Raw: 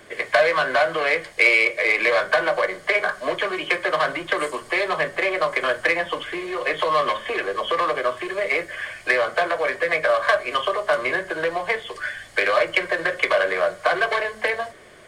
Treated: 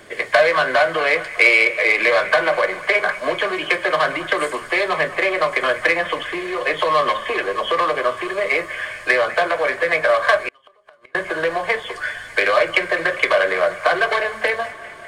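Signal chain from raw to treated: on a send: feedback echo behind a band-pass 201 ms, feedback 72%, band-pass 1.5 kHz, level -15 dB; 10.46–11.15 s: on the sum: inverted gate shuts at -15 dBFS, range -35 dB; trim +3 dB

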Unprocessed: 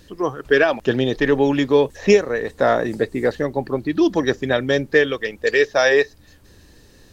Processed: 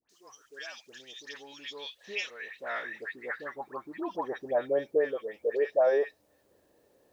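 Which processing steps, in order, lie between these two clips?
band-pass sweep 6.3 kHz -> 600 Hz, 1.01–4.76 s; word length cut 12-bit, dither triangular; phase dispersion highs, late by 97 ms, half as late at 1.4 kHz; trim -4.5 dB

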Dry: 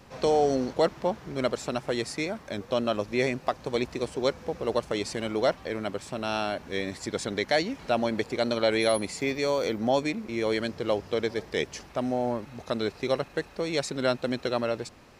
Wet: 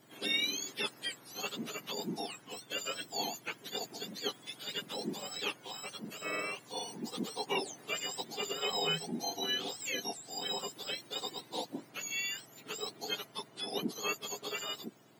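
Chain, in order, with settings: spectrum inverted on a logarithmic axis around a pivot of 1.3 kHz; trim -6.5 dB

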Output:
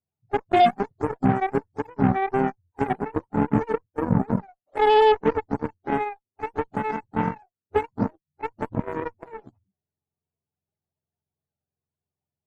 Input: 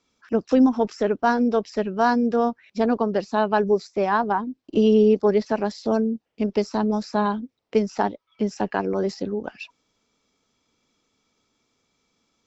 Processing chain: spectrum inverted on a logarithmic axis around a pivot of 430 Hz; Chebyshev shaper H 2 -13 dB, 4 -18 dB, 7 -18 dB, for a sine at -8 dBFS

